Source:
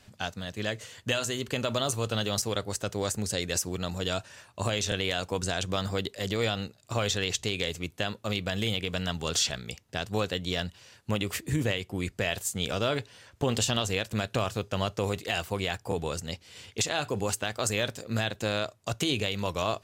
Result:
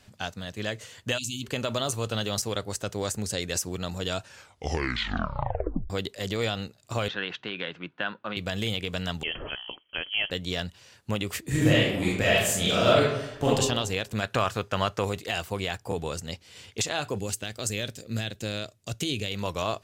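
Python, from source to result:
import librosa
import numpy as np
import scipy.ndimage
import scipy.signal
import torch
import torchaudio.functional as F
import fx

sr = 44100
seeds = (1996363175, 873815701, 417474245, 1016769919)

y = fx.spec_erase(x, sr, start_s=1.18, length_s=0.25, low_hz=360.0, high_hz=2200.0)
y = fx.cabinet(y, sr, low_hz=170.0, low_slope=24, high_hz=3100.0, hz=(230.0, 430.0, 660.0, 980.0, 1500.0, 2200.0), db=(-4, -7, -3, 4, 10, -3), at=(7.08, 8.37))
y = fx.freq_invert(y, sr, carrier_hz=3200, at=(9.23, 10.31))
y = fx.reverb_throw(y, sr, start_s=11.48, length_s=2.0, rt60_s=0.89, drr_db=-7.0)
y = fx.peak_eq(y, sr, hz=1400.0, db=8.0, octaves=1.7, at=(14.22, 15.05))
y = fx.peak_eq(y, sr, hz=980.0, db=-11.0, octaves=1.6, at=(17.18, 19.31))
y = fx.edit(y, sr, fx.tape_stop(start_s=4.26, length_s=1.64), tone=tone)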